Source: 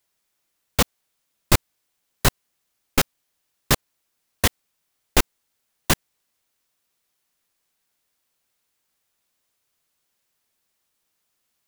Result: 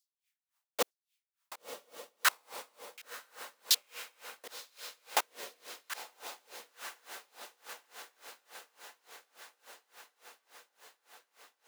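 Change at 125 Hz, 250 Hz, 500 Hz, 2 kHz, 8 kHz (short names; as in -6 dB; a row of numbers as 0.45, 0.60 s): under -40 dB, -27.5 dB, -12.5 dB, -9.0 dB, -10.0 dB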